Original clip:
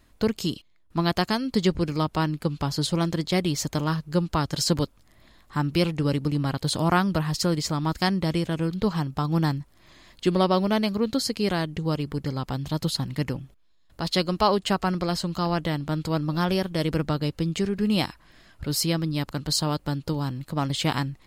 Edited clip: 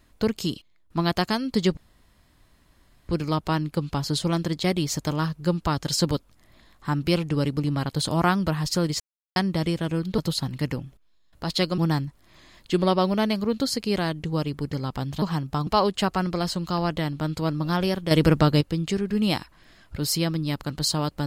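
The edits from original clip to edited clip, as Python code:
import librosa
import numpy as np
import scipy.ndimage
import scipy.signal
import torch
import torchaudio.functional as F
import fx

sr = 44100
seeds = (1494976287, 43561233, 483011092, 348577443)

y = fx.edit(x, sr, fx.insert_room_tone(at_s=1.77, length_s=1.32),
    fx.silence(start_s=7.68, length_s=0.36),
    fx.swap(start_s=8.86, length_s=0.45, other_s=12.75, other_length_s=1.6),
    fx.clip_gain(start_s=16.79, length_s=0.5, db=7.0), tone=tone)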